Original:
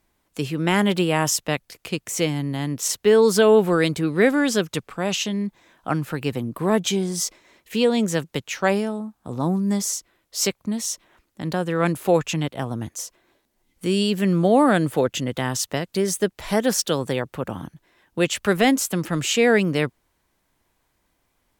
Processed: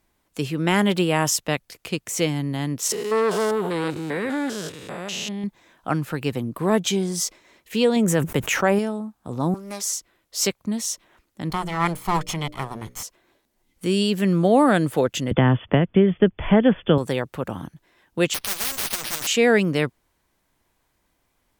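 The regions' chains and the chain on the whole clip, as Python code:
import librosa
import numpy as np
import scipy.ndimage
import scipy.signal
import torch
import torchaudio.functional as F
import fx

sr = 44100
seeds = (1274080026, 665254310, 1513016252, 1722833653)

y = fx.chain(x, sr, fx.spec_steps(hold_ms=200),
    fx.low_shelf(hz=260.0, db=-6.0),
    fx.transformer_sat(knee_hz=920.0), at=(2.92, 5.44))
y = fx.chain(y, sr, fx.peak_eq(hz=4400.0, db=-12.0, octaves=1.1),
    fx.env_flatten(amount_pct=70), at=(7.96, 8.79))
y = fx.chain(y, sr, fx.highpass(hz=280.0, slope=24),
    fx.low_shelf(hz=360.0, db=-7.0),
    fx.doppler_dist(depth_ms=0.36), at=(9.54, 9.97))
y = fx.chain(y, sr, fx.lower_of_two(delay_ms=0.94),
    fx.peak_eq(hz=270.0, db=-8.5, octaves=0.53),
    fx.hum_notches(base_hz=60, count=10), at=(11.5, 13.03))
y = fx.chain(y, sr, fx.brickwall_lowpass(high_hz=3500.0),
    fx.low_shelf(hz=290.0, db=11.5),
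    fx.band_squash(depth_pct=70), at=(15.31, 16.98))
y = fx.chain(y, sr, fx.lower_of_two(delay_ms=8.5),
    fx.resample_bad(factor=6, down='none', up='hold'),
    fx.spectral_comp(ratio=10.0), at=(18.34, 19.27))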